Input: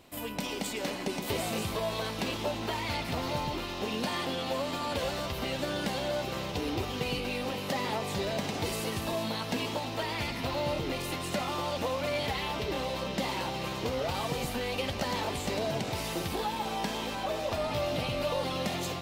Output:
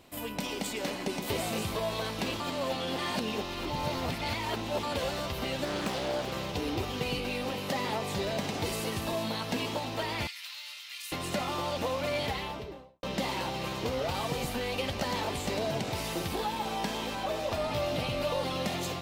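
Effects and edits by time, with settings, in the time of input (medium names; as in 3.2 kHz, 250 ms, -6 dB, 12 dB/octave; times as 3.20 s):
2.40–4.83 s: reverse
5.65–6.32 s: loudspeaker Doppler distortion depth 0.86 ms
10.27–11.12 s: Bessel high-pass 2.6 kHz, order 4
12.22–13.03 s: studio fade out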